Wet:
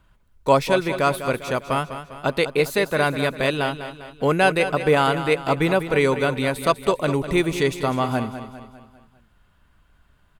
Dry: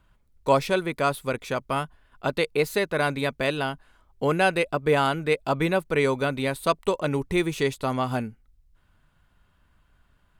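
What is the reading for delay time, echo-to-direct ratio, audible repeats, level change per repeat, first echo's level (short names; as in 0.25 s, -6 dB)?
0.2 s, -10.0 dB, 4, -6.0 dB, -11.0 dB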